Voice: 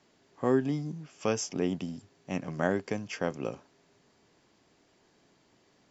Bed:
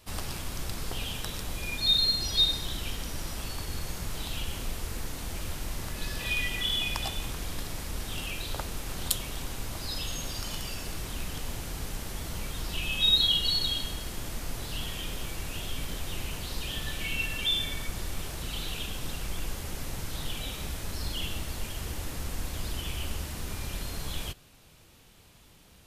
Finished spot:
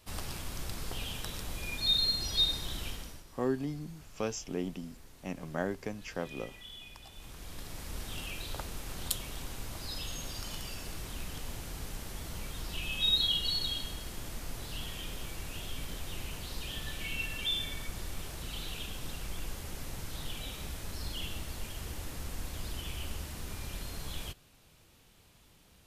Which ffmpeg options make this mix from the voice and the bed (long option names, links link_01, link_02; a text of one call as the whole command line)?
ffmpeg -i stem1.wav -i stem2.wav -filter_complex "[0:a]adelay=2950,volume=-5.5dB[link_01];[1:a]volume=10dB,afade=type=out:start_time=2.85:duration=0.39:silence=0.177828,afade=type=in:start_time=7.08:duration=0.88:silence=0.199526[link_02];[link_01][link_02]amix=inputs=2:normalize=0" out.wav